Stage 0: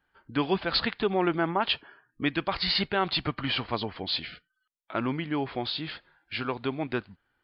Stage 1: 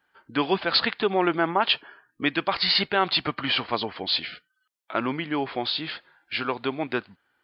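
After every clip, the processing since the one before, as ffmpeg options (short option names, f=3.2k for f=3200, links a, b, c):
-af "highpass=f=320:p=1,volume=5dB"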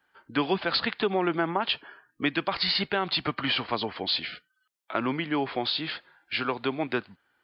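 -filter_complex "[0:a]acrossover=split=270[a][b];[b]acompressor=threshold=-23dB:ratio=6[c];[a][c]amix=inputs=2:normalize=0"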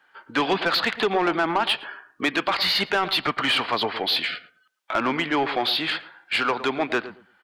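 -filter_complex "[0:a]asplit=2[a][b];[b]highpass=f=720:p=1,volume=17dB,asoftclip=type=tanh:threshold=-11.5dB[c];[a][c]amix=inputs=2:normalize=0,lowpass=f=3.6k:p=1,volume=-6dB,asplit=2[d][e];[e]adelay=112,lowpass=f=1.1k:p=1,volume=-12dB,asplit=2[f][g];[g]adelay=112,lowpass=f=1.1k:p=1,volume=0.2,asplit=2[h][i];[i]adelay=112,lowpass=f=1.1k:p=1,volume=0.2[j];[d][f][h][j]amix=inputs=4:normalize=0"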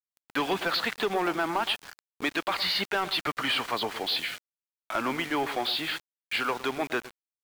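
-af "aeval=exprs='val(0)*gte(abs(val(0)),0.0251)':c=same,volume=-5.5dB"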